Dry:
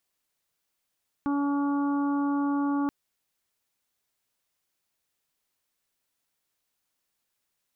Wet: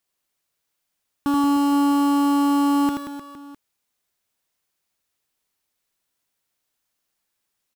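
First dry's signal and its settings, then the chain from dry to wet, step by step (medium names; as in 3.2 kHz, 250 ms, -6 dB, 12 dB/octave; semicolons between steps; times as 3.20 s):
steady additive tone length 1.63 s, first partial 284 Hz, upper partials -18.5/-11/-12/-19 dB, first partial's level -24 dB
in parallel at +1 dB: bit crusher 6-bit; on the sum: reverse bouncing-ball echo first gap 80 ms, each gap 1.25×, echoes 5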